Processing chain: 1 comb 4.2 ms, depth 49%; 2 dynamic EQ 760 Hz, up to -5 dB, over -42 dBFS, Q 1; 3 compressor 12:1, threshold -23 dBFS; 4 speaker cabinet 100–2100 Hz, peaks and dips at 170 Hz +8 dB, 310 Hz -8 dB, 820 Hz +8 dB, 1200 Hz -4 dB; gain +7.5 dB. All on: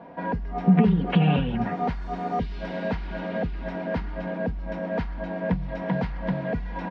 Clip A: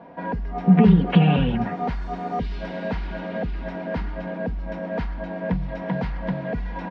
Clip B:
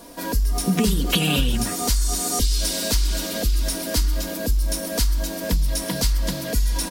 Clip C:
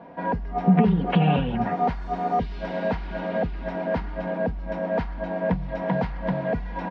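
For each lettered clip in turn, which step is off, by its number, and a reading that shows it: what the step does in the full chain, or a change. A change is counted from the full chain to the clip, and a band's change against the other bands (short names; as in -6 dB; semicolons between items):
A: 3, mean gain reduction 1.5 dB; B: 4, 4 kHz band +17.5 dB; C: 2, momentary loudness spread change -2 LU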